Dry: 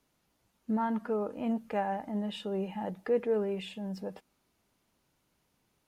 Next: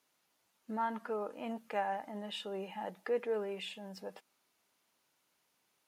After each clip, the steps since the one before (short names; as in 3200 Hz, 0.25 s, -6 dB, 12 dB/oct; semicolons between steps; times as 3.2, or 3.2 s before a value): HPF 850 Hz 6 dB/oct; gain +1 dB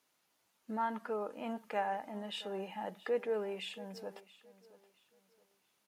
feedback echo 0.674 s, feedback 30%, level -19 dB